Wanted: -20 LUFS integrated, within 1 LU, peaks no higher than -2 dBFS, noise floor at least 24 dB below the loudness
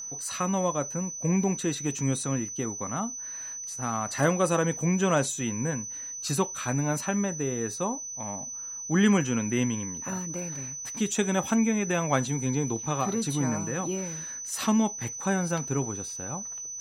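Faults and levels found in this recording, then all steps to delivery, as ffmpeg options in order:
steady tone 6000 Hz; tone level -35 dBFS; loudness -28.5 LUFS; peak -9.5 dBFS; loudness target -20.0 LUFS
-> -af "bandreject=f=6k:w=30"
-af "volume=8.5dB,alimiter=limit=-2dB:level=0:latency=1"

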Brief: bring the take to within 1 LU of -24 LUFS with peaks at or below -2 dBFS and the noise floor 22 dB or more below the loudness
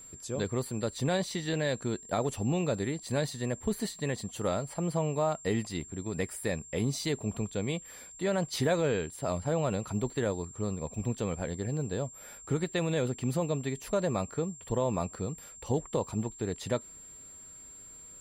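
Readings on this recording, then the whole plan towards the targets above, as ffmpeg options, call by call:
steady tone 7400 Hz; tone level -47 dBFS; loudness -32.5 LUFS; peak -16.5 dBFS; loudness target -24.0 LUFS
-> -af "bandreject=f=7.4k:w=30"
-af "volume=8.5dB"

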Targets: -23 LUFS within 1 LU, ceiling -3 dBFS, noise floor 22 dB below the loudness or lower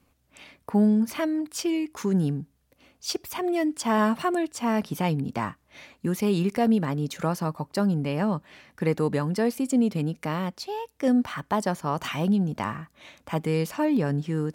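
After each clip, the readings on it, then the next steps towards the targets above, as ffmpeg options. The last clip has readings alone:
loudness -26.5 LUFS; peak -12.5 dBFS; loudness target -23.0 LUFS
-> -af "volume=3.5dB"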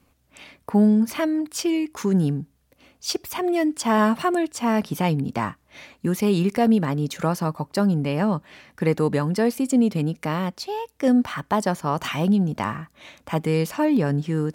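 loudness -23.0 LUFS; peak -9.0 dBFS; noise floor -64 dBFS

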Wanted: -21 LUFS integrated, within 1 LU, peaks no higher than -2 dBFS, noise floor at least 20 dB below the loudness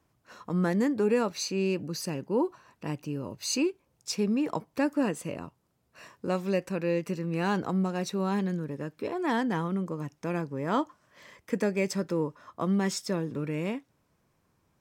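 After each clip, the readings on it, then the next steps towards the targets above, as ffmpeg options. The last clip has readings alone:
loudness -30.5 LUFS; peak -14.5 dBFS; loudness target -21.0 LUFS
-> -af "volume=9.5dB"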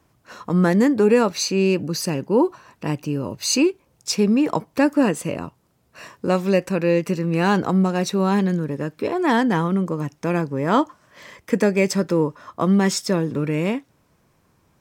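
loudness -21.0 LUFS; peak -5.0 dBFS; noise floor -63 dBFS

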